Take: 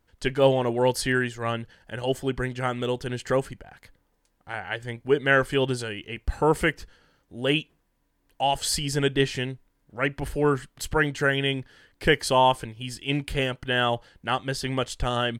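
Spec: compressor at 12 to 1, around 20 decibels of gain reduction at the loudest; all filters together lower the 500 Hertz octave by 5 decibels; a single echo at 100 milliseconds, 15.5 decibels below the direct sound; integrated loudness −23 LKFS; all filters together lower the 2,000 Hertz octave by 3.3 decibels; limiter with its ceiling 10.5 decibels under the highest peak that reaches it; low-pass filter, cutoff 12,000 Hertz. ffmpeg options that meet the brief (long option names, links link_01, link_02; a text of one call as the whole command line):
ffmpeg -i in.wav -af "lowpass=12000,equalizer=frequency=500:width_type=o:gain=-6,equalizer=frequency=2000:width_type=o:gain=-4,acompressor=threshold=-38dB:ratio=12,alimiter=level_in=12dB:limit=-24dB:level=0:latency=1,volume=-12dB,aecho=1:1:100:0.168,volume=24dB" out.wav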